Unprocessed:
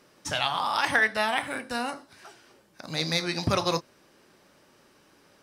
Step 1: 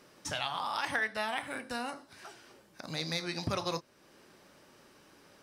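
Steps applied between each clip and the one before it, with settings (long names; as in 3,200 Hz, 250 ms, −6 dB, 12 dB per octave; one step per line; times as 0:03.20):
downward compressor 1.5 to 1, threshold −45 dBFS, peak gain reduction 9.5 dB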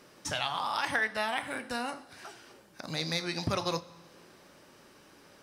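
four-comb reverb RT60 1.9 s, combs from 32 ms, DRR 19 dB
level +2.5 dB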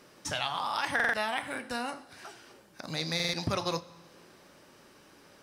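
buffer that repeats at 0:00.95/0:03.15, samples 2,048, times 3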